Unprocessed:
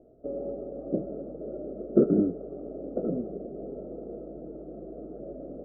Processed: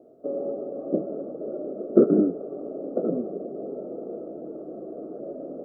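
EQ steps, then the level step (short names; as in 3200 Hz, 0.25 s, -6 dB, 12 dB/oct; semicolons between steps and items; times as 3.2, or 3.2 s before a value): HPF 220 Hz 12 dB/oct; bell 1100 Hz +10.5 dB 0.23 oct; +5.0 dB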